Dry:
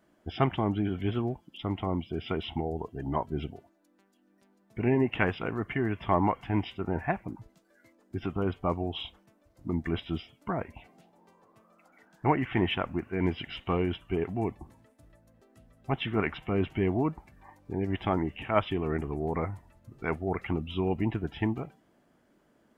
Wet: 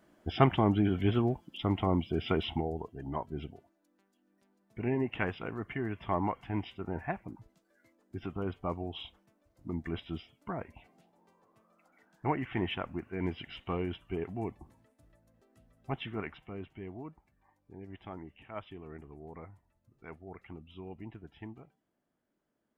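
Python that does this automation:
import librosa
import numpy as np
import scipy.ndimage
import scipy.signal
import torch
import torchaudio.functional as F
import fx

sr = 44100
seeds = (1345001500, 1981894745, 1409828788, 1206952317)

y = fx.gain(x, sr, db=fx.line((2.41, 2.0), (2.95, -6.0), (15.92, -6.0), (16.71, -16.5)))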